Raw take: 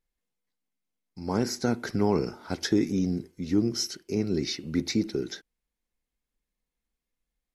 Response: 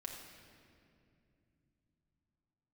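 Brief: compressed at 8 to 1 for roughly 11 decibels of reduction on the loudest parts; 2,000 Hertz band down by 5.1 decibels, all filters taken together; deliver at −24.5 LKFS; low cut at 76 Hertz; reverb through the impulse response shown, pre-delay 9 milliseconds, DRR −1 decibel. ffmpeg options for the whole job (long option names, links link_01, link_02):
-filter_complex "[0:a]highpass=76,equalizer=frequency=2000:width_type=o:gain=-7,acompressor=threshold=-30dB:ratio=8,asplit=2[link_01][link_02];[1:a]atrim=start_sample=2205,adelay=9[link_03];[link_02][link_03]afir=irnorm=-1:irlink=0,volume=3dB[link_04];[link_01][link_04]amix=inputs=2:normalize=0,volume=8dB"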